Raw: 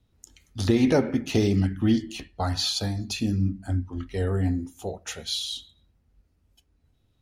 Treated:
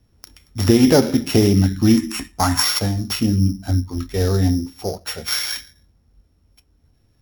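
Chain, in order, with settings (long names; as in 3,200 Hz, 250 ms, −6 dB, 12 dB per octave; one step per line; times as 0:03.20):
samples sorted by size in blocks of 8 samples
0:01.97–0:02.63: graphic EQ with 10 bands 125 Hz −5 dB, 250 Hz +8 dB, 500 Hz −10 dB, 1,000 Hz +8 dB, 2,000 Hz +5 dB, 4,000 Hz −5 dB, 8,000 Hz +9 dB
level +7.5 dB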